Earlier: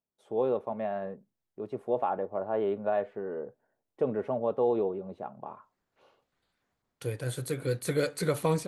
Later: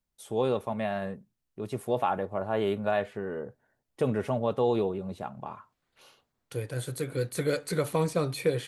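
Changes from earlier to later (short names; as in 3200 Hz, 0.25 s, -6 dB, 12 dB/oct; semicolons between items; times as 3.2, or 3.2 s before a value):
first voice: remove band-pass 510 Hz, Q 0.78; second voice: entry -0.50 s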